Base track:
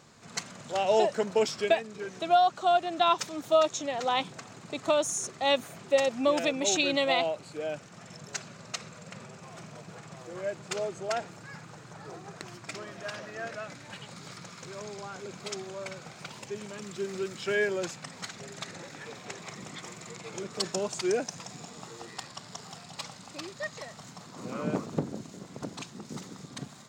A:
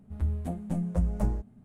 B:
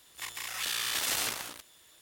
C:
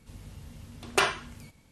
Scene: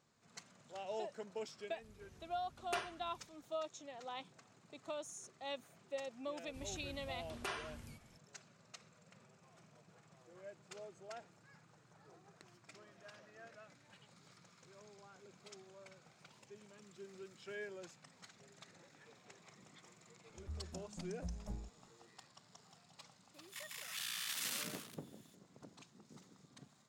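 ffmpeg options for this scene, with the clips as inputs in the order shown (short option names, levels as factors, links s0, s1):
-filter_complex "[3:a]asplit=2[s0][s1];[0:a]volume=0.112[s2];[s1]acompressor=threshold=0.0141:ratio=2:attack=0.19:release=96:knee=1:detection=peak[s3];[2:a]highpass=1200[s4];[s0]atrim=end=1.71,asetpts=PTS-STARTPTS,volume=0.133,afade=t=in:d=0.004:c=hsin,afade=t=out:st=1.706:d=0.004:c=hsin,adelay=1750[s5];[s3]atrim=end=1.71,asetpts=PTS-STARTPTS,volume=0.473,afade=t=in:d=0.004:c=hsin,afade=t=out:st=1.706:d=0.004:c=hsin,adelay=6470[s6];[1:a]atrim=end=1.64,asetpts=PTS-STARTPTS,volume=0.126,afade=t=in:d=0.004:c=hsin,afade=t=out:st=1.636:d=0.004:c=hsin,adelay=20270[s7];[s4]atrim=end=2.01,asetpts=PTS-STARTPTS,volume=0.316,afade=t=in:d=0.004:c=hsin,afade=t=out:st=2.006:d=0.004:c=hsin,adelay=23340[s8];[s2][s5][s6][s7][s8]amix=inputs=5:normalize=0"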